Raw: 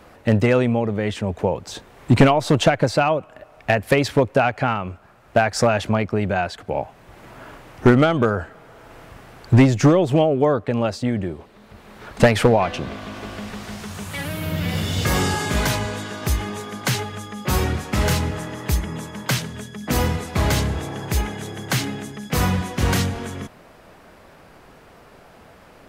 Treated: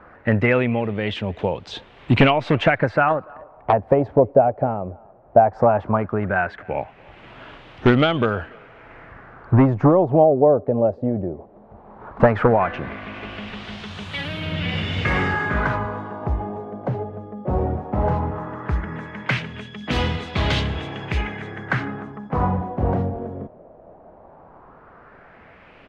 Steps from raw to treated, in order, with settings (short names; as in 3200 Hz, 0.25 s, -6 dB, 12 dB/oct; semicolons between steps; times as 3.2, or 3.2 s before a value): speakerphone echo 0.29 s, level -24 dB; LFO low-pass sine 0.16 Hz 610–3400 Hz; 3.08–3.73 Doppler distortion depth 0.63 ms; gain -2 dB